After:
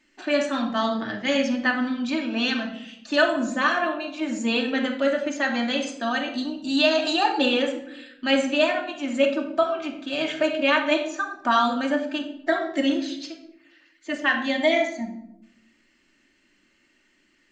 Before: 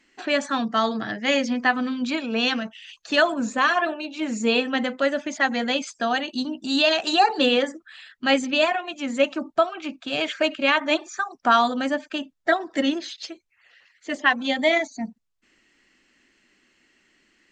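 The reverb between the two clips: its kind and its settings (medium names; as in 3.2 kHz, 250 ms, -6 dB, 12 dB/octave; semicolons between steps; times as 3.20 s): simulated room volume 2000 m³, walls furnished, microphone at 2.6 m; trim -4 dB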